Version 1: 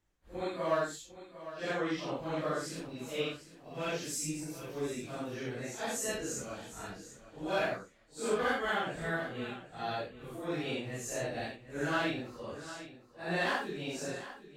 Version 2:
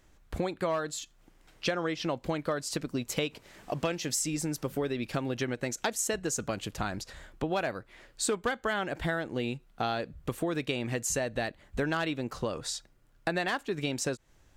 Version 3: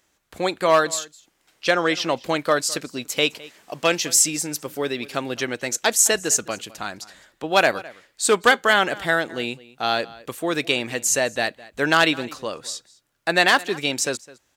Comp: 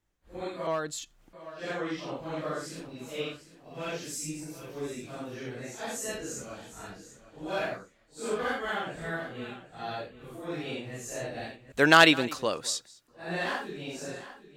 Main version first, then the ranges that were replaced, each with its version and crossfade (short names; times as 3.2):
1
0.67–1.33 from 2
11.72–13.08 from 3